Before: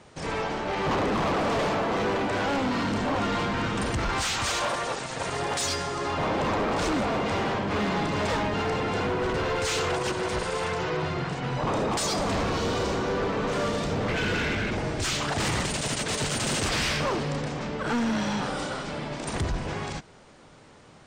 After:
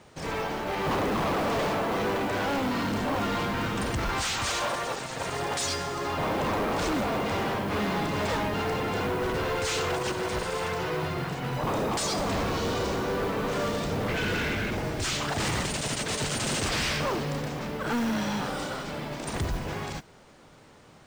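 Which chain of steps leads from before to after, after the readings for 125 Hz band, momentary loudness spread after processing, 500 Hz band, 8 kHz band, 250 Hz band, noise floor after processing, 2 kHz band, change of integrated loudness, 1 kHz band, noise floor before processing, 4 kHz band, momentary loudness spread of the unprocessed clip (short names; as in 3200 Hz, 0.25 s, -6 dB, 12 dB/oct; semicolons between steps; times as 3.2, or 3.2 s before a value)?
-1.5 dB, 5 LU, -1.5 dB, -1.5 dB, -1.5 dB, -53 dBFS, -1.5 dB, -1.5 dB, -1.5 dB, -52 dBFS, -1.5 dB, 5 LU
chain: modulation noise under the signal 24 dB; gain -1.5 dB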